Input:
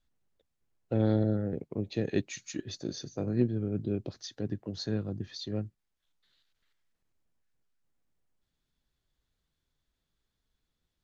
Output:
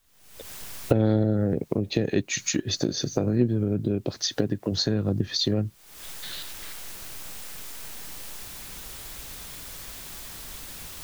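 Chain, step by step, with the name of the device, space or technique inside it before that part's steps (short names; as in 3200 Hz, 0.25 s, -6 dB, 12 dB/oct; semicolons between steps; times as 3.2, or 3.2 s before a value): 3.98–4.72 low shelf 190 Hz -5 dB; cheap recorder with automatic gain (white noise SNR 40 dB; recorder AGC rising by 60 dB/s); gain +4.5 dB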